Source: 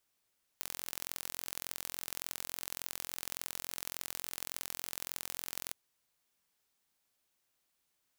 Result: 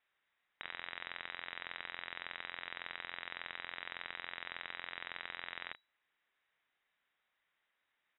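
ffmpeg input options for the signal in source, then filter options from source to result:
-f lavfi -i "aevalsrc='0.299*eq(mod(n,1014),0)*(0.5+0.5*eq(mod(n,2028),0))':d=5.12:s=44100"
-filter_complex "[0:a]equalizer=f=2000:t=o:w=0.68:g=9,asplit=2[s0][s1];[s1]adelay=34,volume=0.299[s2];[s0][s2]amix=inputs=2:normalize=0,lowpass=f=3300:t=q:w=0.5098,lowpass=f=3300:t=q:w=0.6013,lowpass=f=3300:t=q:w=0.9,lowpass=f=3300:t=q:w=2.563,afreqshift=-3900"

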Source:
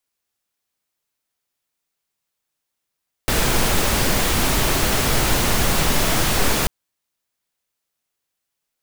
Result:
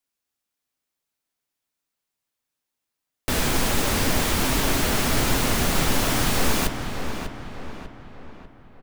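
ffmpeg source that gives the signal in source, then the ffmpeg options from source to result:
-f lavfi -i "anoisesrc=c=pink:a=0.646:d=3.39:r=44100:seed=1"
-filter_complex "[0:a]flanger=delay=6.2:depth=7.6:regen=-51:speed=1.3:shape=triangular,equalizer=f=260:t=o:w=0.34:g=5.5,asplit=2[s0][s1];[s1]adelay=595,lowpass=f=3000:p=1,volume=0.447,asplit=2[s2][s3];[s3]adelay=595,lowpass=f=3000:p=1,volume=0.49,asplit=2[s4][s5];[s5]adelay=595,lowpass=f=3000:p=1,volume=0.49,asplit=2[s6][s7];[s7]adelay=595,lowpass=f=3000:p=1,volume=0.49,asplit=2[s8][s9];[s9]adelay=595,lowpass=f=3000:p=1,volume=0.49,asplit=2[s10][s11];[s11]adelay=595,lowpass=f=3000:p=1,volume=0.49[s12];[s0][s2][s4][s6][s8][s10][s12]amix=inputs=7:normalize=0"

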